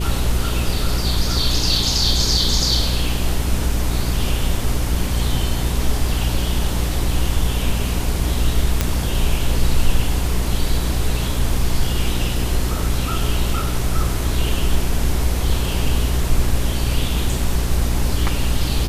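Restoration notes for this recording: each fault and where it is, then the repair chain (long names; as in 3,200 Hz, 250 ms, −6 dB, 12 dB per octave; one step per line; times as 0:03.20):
mains hum 60 Hz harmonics 7 −22 dBFS
0:08.81: click −2 dBFS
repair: click removal
hum removal 60 Hz, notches 7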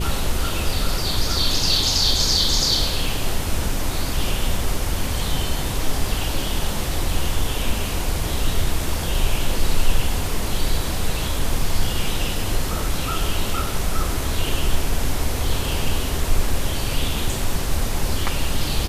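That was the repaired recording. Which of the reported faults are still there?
none of them is left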